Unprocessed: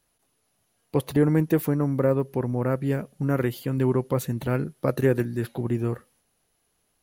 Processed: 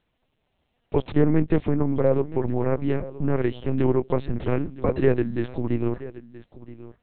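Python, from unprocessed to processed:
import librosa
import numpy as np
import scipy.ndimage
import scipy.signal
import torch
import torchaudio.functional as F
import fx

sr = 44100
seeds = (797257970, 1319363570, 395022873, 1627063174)

p1 = fx.peak_eq(x, sr, hz=1400.0, db=-6.5, octaves=0.47)
p2 = p1 + fx.echo_single(p1, sr, ms=974, db=-17.0, dry=0)
p3 = fx.lpc_vocoder(p2, sr, seeds[0], excitation='pitch_kept', order=8)
y = p3 * 10.0 ** (2.0 / 20.0)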